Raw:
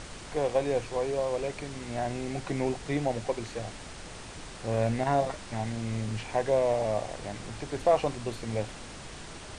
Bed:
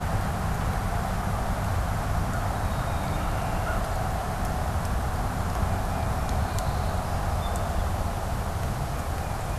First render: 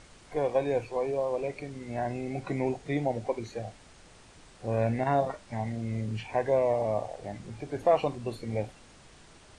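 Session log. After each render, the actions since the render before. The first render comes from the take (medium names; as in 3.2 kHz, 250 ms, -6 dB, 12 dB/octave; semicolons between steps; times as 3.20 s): noise print and reduce 11 dB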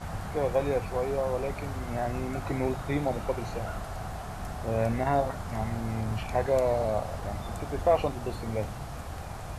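add bed -9 dB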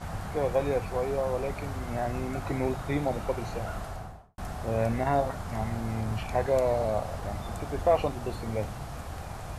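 3.83–4.38 s: studio fade out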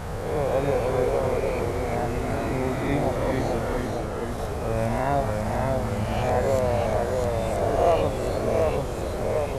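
reverse spectral sustain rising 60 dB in 1.17 s; ever faster or slower copies 262 ms, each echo -1 st, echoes 3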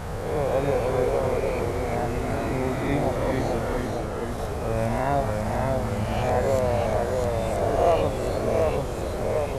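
no audible change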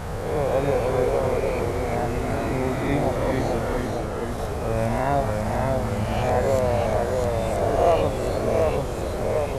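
trim +1.5 dB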